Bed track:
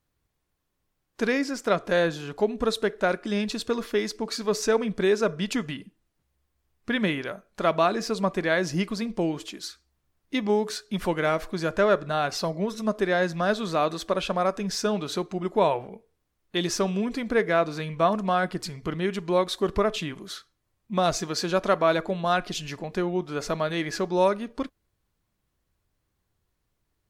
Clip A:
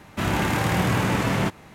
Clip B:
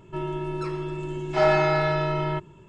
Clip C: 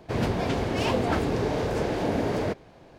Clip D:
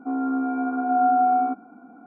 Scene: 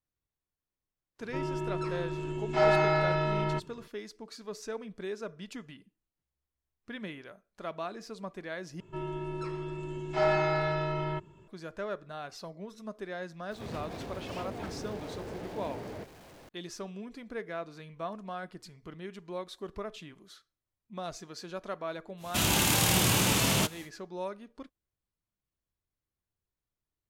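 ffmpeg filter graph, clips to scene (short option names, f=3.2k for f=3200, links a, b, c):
-filter_complex "[2:a]asplit=2[a][b];[0:a]volume=-15.5dB[c];[3:a]aeval=exprs='val(0)+0.5*0.0237*sgn(val(0))':c=same[d];[1:a]aexciter=amount=4.6:drive=4.8:freq=2.7k[e];[c]asplit=2[f][g];[f]atrim=end=8.804[h];[b]atrim=end=2.68,asetpts=PTS-STARTPTS,volume=-6.5dB[i];[g]atrim=start=11.476[j];[a]atrim=end=2.68,asetpts=PTS-STARTPTS,volume=-4dB,afade=t=in:d=0.004:c=hsin,afade=t=out:st=2.676:d=0.004:c=hsin,adelay=1200[k];[d]atrim=end=2.98,asetpts=PTS-STARTPTS,volume=-16dB,afade=t=in:d=0.004:c=hsin,afade=t=out:st=2.976:d=0.004:c=hsin,adelay=13510[l];[e]atrim=end=1.74,asetpts=PTS-STARTPTS,volume=-6dB,afade=t=in:d=0.1,afade=t=out:st=1.64:d=0.1,adelay=22170[m];[h][i]acrossfade=d=0.004:c1=hsin:c2=hsin[n];[n][j]acrossfade=d=0.004:c1=hsin:c2=hsin[o];[o][k][l][m]amix=inputs=4:normalize=0"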